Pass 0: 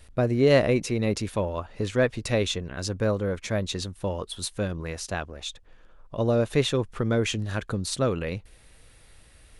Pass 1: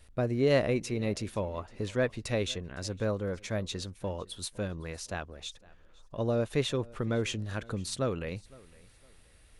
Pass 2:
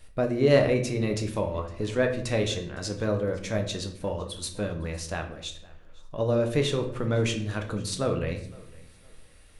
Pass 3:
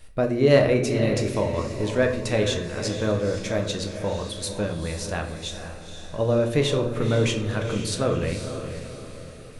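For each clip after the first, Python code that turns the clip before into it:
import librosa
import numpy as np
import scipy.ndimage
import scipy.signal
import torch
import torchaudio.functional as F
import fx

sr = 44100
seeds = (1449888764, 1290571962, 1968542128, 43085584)

y1 = fx.echo_feedback(x, sr, ms=510, feedback_pct=29, wet_db=-23.5)
y1 = y1 * librosa.db_to_amplitude(-6.0)
y2 = fx.hum_notches(y1, sr, base_hz=60, count=2)
y2 = fx.room_shoebox(y2, sr, seeds[0], volume_m3=100.0, walls='mixed', distance_m=0.5)
y2 = y2 * librosa.db_to_amplitude(3.0)
y3 = fx.echo_diffused(y2, sr, ms=489, feedback_pct=47, wet_db=-9)
y3 = y3 * librosa.db_to_amplitude(3.0)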